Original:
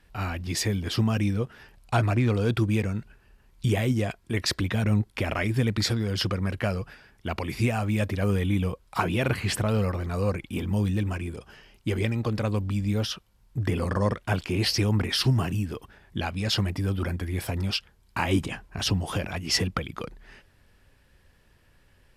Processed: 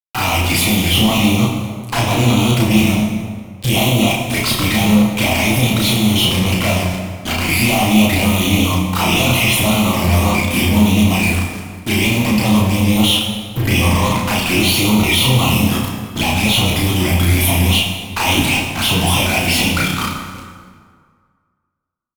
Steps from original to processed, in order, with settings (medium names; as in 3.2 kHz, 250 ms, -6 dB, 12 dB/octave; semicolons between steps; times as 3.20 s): high-pass 490 Hz 6 dB/octave; treble shelf 9.7 kHz +10.5 dB; static phaser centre 1.7 kHz, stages 6; fuzz box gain 54 dB, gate -47 dBFS; touch-sensitive flanger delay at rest 11.4 ms, full sweep at -13 dBFS; doubling 33 ms -2 dB; plate-style reverb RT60 1.9 s, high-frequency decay 0.65×, DRR 0.5 dB; trim -1.5 dB